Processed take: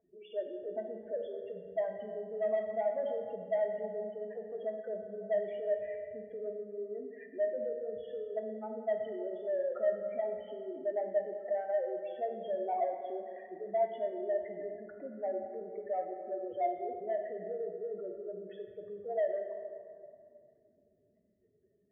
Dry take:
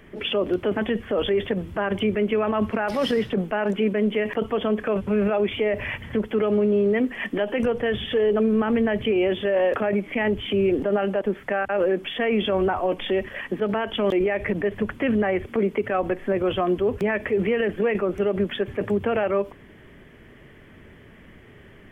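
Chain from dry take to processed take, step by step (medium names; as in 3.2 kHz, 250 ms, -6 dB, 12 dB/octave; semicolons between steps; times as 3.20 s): spectral contrast enhancement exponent 3.5; peak limiter -19.5 dBFS, peak gain reduction 5.5 dB; band-pass filter 660 Hz, Q 7.5; saturation -24 dBFS, distortion -20 dB; plate-style reverb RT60 2.3 s, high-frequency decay 0.55×, DRR 3 dB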